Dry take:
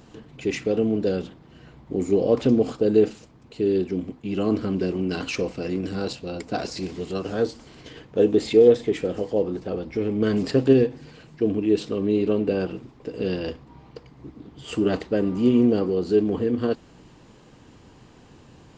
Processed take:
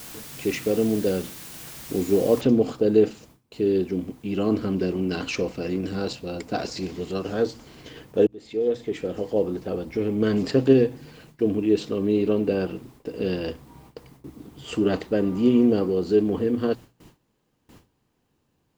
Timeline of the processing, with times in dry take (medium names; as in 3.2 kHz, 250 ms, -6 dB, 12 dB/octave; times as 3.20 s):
2.41 s: noise floor step -41 dB -63 dB
8.27–9.38 s: fade in
whole clip: gate with hold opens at -37 dBFS; hum notches 60/120 Hz